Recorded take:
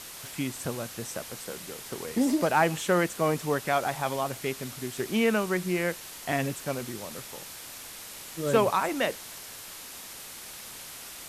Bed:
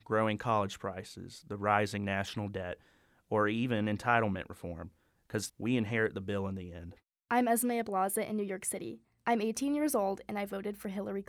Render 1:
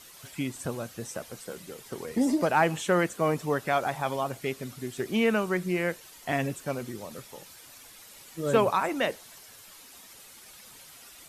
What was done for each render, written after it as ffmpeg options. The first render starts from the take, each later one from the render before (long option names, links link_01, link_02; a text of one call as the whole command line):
ffmpeg -i in.wav -af "afftdn=noise_reduction=10:noise_floor=-43" out.wav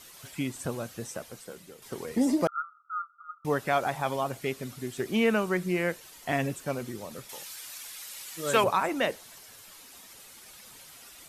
ffmpeg -i in.wav -filter_complex "[0:a]asettb=1/sr,asplit=3[link_01][link_02][link_03];[link_01]atrim=end=2.474[link_04];[link_02]atrim=start=2.47:end=3.45,asetpts=PTS-STARTPTS,afade=type=in:duration=0.004:curve=qsin,afade=type=out:start_time=0.976:duration=0.004:curve=qsin,asuperpass=centerf=1300:order=20:qfactor=5.1[link_05];[link_03]atrim=start=3.446[link_06];[link_04][link_05]acrossfade=duration=0.004:curve1=hsin:curve2=qsin[link_07];[link_07][link_06]acrossfade=duration=0.004:curve1=qsin:curve2=hsin,asettb=1/sr,asplit=3[link_08][link_09][link_10];[link_08]atrim=end=7.294[link_11];[link_09]atrim=start=7.29:end=8.64,asetpts=PTS-STARTPTS,afade=type=in:duration=0.004:curve=qsin,afade=type=out:start_time=1.346:duration=0.004:curve=qsin,tiltshelf=frequency=760:gain=-8[link_12];[link_10]atrim=start=8.636[link_13];[link_11][link_12]acrossfade=duration=0.004:curve1=hsin:curve2=qsin[link_14];[link_14][link_13]acrossfade=duration=0.004:curve1=qsin:curve2=hsin,asplit=2[link_15][link_16];[link_15]atrim=end=1.82,asetpts=PTS-STARTPTS,afade=type=out:start_time=0.98:duration=0.84:silence=0.398107[link_17];[link_16]atrim=start=1.82,asetpts=PTS-STARTPTS,afade=type=in:duration=0.004:curve=hsin:silence=0.398107[link_18];[link_17][link_18]concat=n=2:v=0:a=1" out.wav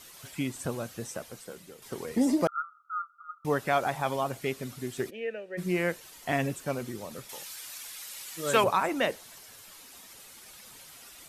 ffmpeg -i in.wav -filter_complex "[0:a]asplit=3[link_01][link_02][link_03];[link_01]afade=type=out:start_time=5.09:duration=0.02[link_04];[link_02]asplit=3[link_05][link_06][link_07];[link_05]bandpass=frequency=530:width_type=q:width=8,volume=0dB[link_08];[link_06]bandpass=frequency=1840:width_type=q:width=8,volume=-6dB[link_09];[link_07]bandpass=frequency=2480:width_type=q:width=8,volume=-9dB[link_10];[link_08][link_09][link_10]amix=inputs=3:normalize=0,afade=type=in:start_time=5.09:duration=0.02,afade=type=out:start_time=5.57:duration=0.02[link_11];[link_03]afade=type=in:start_time=5.57:duration=0.02[link_12];[link_04][link_11][link_12]amix=inputs=3:normalize=0" out.wav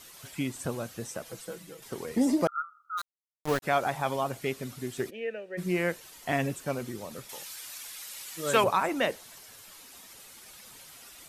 ffmpeg -i in.wav -filter_complex "[0:a]asettb=1/sr,asplit=3[link_01][link_02][link_03];[link_01]atrim=end=1.254[link_04];[link_02]atrim=start=1.25:end=1.84,asetpts=PTS-STARTPTS,afade=type=in:duration=0.004:curve=qsin,afade=type=out:start_time=0.586:duration=0.004:curve=qsin,aecho=1:1:6.1:0.89,atrim=end_sample=26019[link_05];[link_03]atrim=start=1.836[link_06];[link_04][link_05]acrossfade=duration=0.004:curve1=hsin:curve2=qsin[link_07];[link_07][link_06]acrossfade=duration=0.004:curve1=qsin:curve2=hsin,asplit=3[link_08][link_09][link_10];[link_08]afade=type=out:start_time=2.97:duration=0.02[link_11];[link_09]aeval=exprs='val(0)*gte(abs(val(0)),0.0335)':channel_layout=same,afade=type=in:start_time=2.97:duration=0.02,afade=type=out:start_time=3.62:duration=0.02[link_12];[link_10]afade=type=in:start_time=3.62:duration=0.02[link_13];[link_11][link_12][link_13]amix=inputs=3:normalize=0" out.wav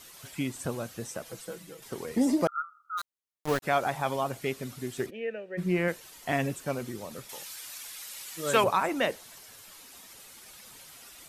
ffmpeg -i in.wav -filter_complex "[0:a]asettb=1/sr,asplit=3[link_01][link_02][link_03];[link_01]atrim=end=5.064[link_04];[link_02]atrim=start=5.06:end=5.88,asetpts=PTS-STARTPTS,afade=type=in:duration=0.004:curve=qsin,afade=type=out:start_time=0.816:duration=0.004:curve=qsin,bass=frequency=250:gain=4,treble=frequency=4000:gain=-7[link_05];[link_03]atrim=start=5.876[link_06];[link_04][link_05]acrossfade=duration=0.004:curve1=hsin:curve2=qsin[link_07];[link_07][link_06]acrossfade=duration=0.004:curve1=qsin:curve2=hsin" out.wav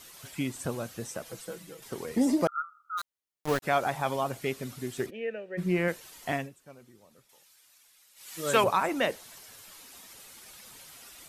ffmpeg -i in.wav -filter_complex "[0:a]asplit=3[link_01][link_02][link_03];[link_01]atrim=end=6.5,asetpts=PTS-STARTPTS,afade=type=out:start_time=6.28:duration=0.22:silence=0.11885[link_04];[link_02]atrim=start=6.5:end=8.15,asetpts=PTS-STARTPTS,volume=-18.5dB[link_05];[link_03]atrim=start=8.15,asetpts=PTS-STARTPTS,afade=type=in:duration=0.22:silence=0.11885[link_06];[link_04][link_05][link_06]concat=n=3:v=0:a=1" out.wav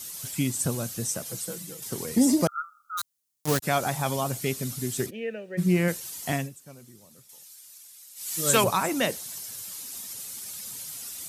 ffmpeg -i in.wav -af "highpass=92,bass=frequency=250:gain=10,treble=frequency=4000:gain=14" out.wav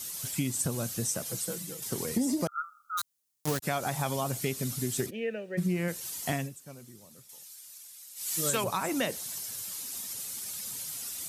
ffmpeg -i in.wav -af "acompressor=threshold=-26dB:ratio=6" out.wav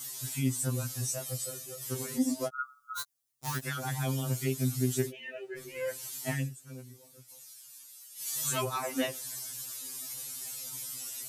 ffmpeg -i in.wav -af "afftfilt=real='re*2.45*eq(mod(b,6),0)':imag='im*2.45*eq(mod(b,6),0)':win_size=2048:overlap=0.75" out.wav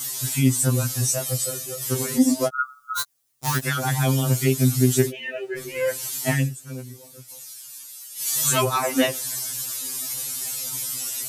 ffmpeg -i in.wav -af "volume=11dB" out.wav